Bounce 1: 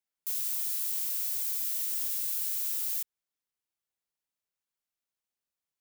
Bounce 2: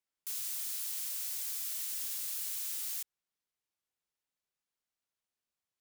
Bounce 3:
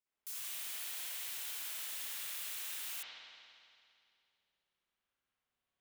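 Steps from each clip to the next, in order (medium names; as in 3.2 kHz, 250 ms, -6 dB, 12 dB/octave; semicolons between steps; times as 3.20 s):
treble shelf 12 kHz -8.5 dB
reverberation RT60 2.4 s, pre-delay 56 ms, DRR -11 dB; trim -5.5 dB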